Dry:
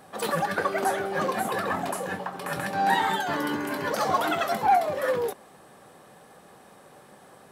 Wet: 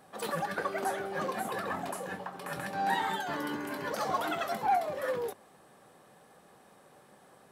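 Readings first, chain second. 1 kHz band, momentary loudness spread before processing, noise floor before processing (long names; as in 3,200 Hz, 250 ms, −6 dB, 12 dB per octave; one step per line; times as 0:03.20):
−7.0 dB, 9 LU, −53 dBFS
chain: mains-hum notches 50/100 Hz
level −7 dB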